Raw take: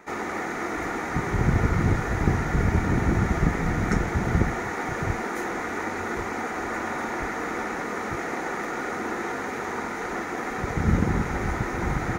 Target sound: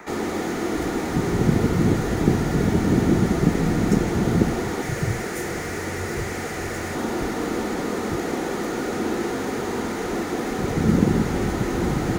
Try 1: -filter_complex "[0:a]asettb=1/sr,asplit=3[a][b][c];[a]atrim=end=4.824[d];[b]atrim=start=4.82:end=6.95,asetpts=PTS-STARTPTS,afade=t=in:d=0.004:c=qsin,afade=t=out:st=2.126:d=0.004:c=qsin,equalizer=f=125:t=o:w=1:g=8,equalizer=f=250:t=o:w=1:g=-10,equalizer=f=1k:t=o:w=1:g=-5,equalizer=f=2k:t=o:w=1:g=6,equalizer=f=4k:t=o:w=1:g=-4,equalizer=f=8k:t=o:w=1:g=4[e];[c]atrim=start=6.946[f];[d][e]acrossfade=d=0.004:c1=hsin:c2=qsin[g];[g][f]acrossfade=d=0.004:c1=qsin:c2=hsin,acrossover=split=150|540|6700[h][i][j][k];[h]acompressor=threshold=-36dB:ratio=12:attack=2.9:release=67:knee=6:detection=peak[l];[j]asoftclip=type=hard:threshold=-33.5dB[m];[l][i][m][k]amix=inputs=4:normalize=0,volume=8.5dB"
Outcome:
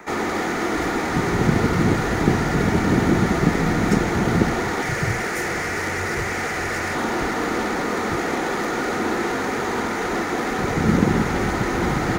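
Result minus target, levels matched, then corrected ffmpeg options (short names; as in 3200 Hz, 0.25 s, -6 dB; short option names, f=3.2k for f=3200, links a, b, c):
hard clip: distortion -4 dB
-filter_complex "[0:a]asettb=1/sr,asplit=3[a][b][c];[a]atrim=end=4.824[d];[b]atrim=start=4.82:end=6.95,asetpts=PTS-STARTPTS,afade=t=in:d=0.004:c=qsin,afade=t=out:st=2.126:d=0.004:c=qsin,equalizer=f=125:t=o:w=1:g=8,equalizer=f=250:t=o:w=1:g=-10,equalizer=f=1k:t=o:w=1:g=-5,equalizer=f=2k:t=o:w=1:g=6,equalizer=f=4k:t=o:w=1:g=-4,equalizer=f=8k:t=o:w=1:g=4[e];[c]atrim=start=6.946[f];[d][e]acrossfade=d=0.004:c1=hsin:c2=qsin[g];[g][f]acrossfade=d=0.004:c1=qsin:c2=hsin,acrossover=split=150|540|6700[h][i][j][k];[h]acompressor=threshold=-36dB:ratio=12:attack=2.9:release=67:knee=6:detection=peak[l];[j]asoftclip=type=hard:threshold=-42.5dB[m];[l][i][m][k]amix=inputs=4:normalize=0,volume=8.5dB"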